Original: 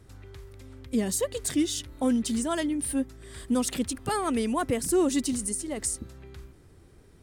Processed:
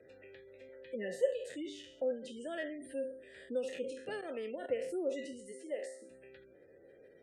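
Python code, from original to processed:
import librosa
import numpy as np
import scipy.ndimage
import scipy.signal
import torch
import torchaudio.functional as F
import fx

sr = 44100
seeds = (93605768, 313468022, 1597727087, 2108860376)

y = fx.spec_trails(x, sr, decay_s=0.57)
y = fx.highpass(y, sr, hz=260.0, slope=24, at=(5.51, 6.09), fade=0.02)
y = fx.spec_gate(y, sr, threshold_db=-30, keep='strong')
y = fx.comb(y, sr, ms=5.6, depth=0.66, at=(0.68, 1.27))
y = fx.level_steps(y, sr, step_db=14, at=(4.21, 4.71))
y = fx.vowel_filter(y, sr, vowel='e')
y = fx.band_squash(y, sr, depth_pct=40)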